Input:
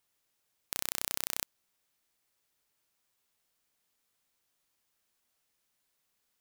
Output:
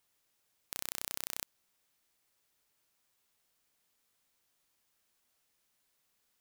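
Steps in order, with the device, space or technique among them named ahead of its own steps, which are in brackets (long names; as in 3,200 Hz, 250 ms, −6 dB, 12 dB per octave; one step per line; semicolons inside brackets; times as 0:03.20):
limiter into clipper (brickwall limiter −9.5 dBFS, peak gain reduction 4.5 dB; hard clipping −11 dBFS, distortion −43 dB)
level +1.5 dB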